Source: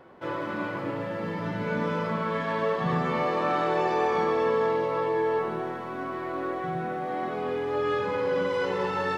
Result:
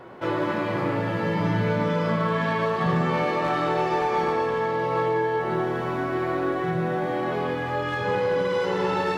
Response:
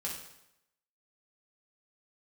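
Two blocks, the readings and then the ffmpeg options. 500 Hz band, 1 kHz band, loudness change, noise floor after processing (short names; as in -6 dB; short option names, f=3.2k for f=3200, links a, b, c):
+2.0 dB, +3.0 dB, +3.0 dB, -28 dBFS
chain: -filter_complex "[0:a]aeval=exprs='clip(val(0),-1,0.0891)':c=same,acompressor=threshold=-29dB:ratio=6,asplit=2[a][b];[1:a]atrim=start_sample=2205,asetrate=31311,aresample=44100[c];[b][c]afir=irnorm=-1:irlink=0,volume=-2.5dB[d];[a][d]amix=inputs=2:normalize=0,volume=3.5dB"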